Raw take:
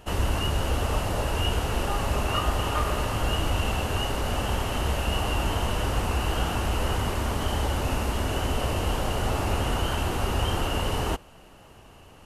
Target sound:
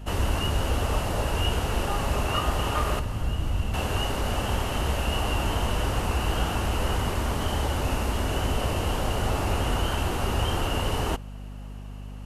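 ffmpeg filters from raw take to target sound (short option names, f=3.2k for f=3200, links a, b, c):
-filter_complex "[0:a]asettb=1/sr,asplit=3[a][b][c];[a]atrim=end=2.994[d];[b]atrim=start=2.99:end=3.74,asetpts=PTS-STARTPTS,afade=t=in:d=0.004:c=qsin,afade=t=out:st=0.746:d=0.004:c=qsin,acrossover=split=230[e][f];[f]acompressor=threshold=-42dB:ratio=2.5[g];[e][g]amix=inputs=2:normalize=0[h];[c]atrim=start=3.736[i];[d][h]acrossfade=d=0.004:c1=hsin:c2=qsin[j];[j][i]acrossfade=d=0.004:c1=qsin:c2=hsin,aeval=exprs='val(0)+0.0141*(sin(2*PI*50*n/s)+sin(2*PI*2*50*n/s)/2+sin(2*PI*3*50*n/s)/3+sin(2*PI*4*50*n/s)/4+sin(2*PI*5*50*n/s)/5)':c=same"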